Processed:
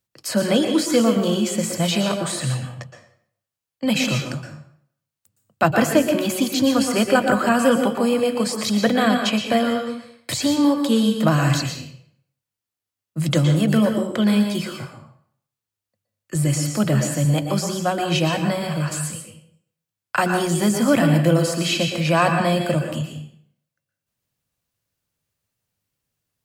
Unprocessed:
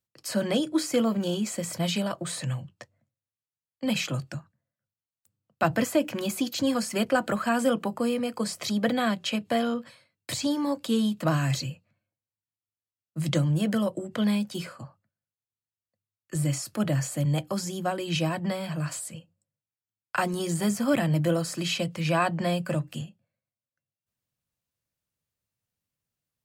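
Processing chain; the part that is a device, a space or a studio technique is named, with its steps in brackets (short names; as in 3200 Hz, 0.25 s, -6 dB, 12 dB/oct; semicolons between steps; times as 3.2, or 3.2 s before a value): bathroom (reverb RT60 0.60 s, pre-delay 0.111 s, DRR 4 dB); gain +6.5 dB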